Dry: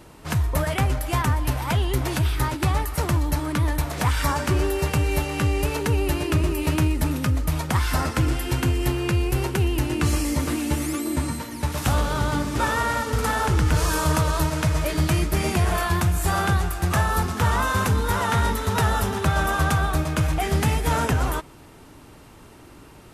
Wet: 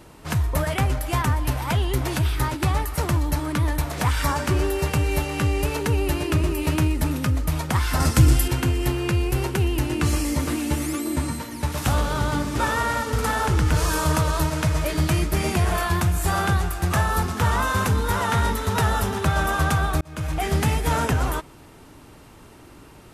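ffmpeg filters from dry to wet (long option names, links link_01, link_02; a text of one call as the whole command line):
ffmpeg -i in.wav -filter_complex "[0:a]asettb=1/sr,asplit=3[link_01][link_02][link_03];[link_01]atrim=end=8.004[link_04];[link_02]atrim=start=8:end=8.48,asetpts=PTS-STARTPTS,afade=type=in:duration=0.004:curve=qsin,afade=type=out:start_time=0.476:duration=0.004:curve=qsin,bass=frequency=250:gain=8,treble=frequency=4000:gain=10[link_05];[link_03]atrim=start=8.476[link_06];[link_04][link_05]acrossfade=duration=0.004:curve1=hsin:curve2=qsin[link_07];[link_07][link_06]acrossfade=duration=0.004:curve1=qsin:curve2=hsin,asplit=2[link_08][link_09];[link_08]atrim=end=20.01,asetpts=PTS-STARTPTS,afade=type=out:start_time=20.006:duration=0.004:curve=hsin[link_10];[link_09]atrim=start=20.01,asetpts=PTS-STARTPTS,afade=type=in:duration=0.44[link_11];[link_10][link_11]concat=n=2:v=0:a=1" out.wav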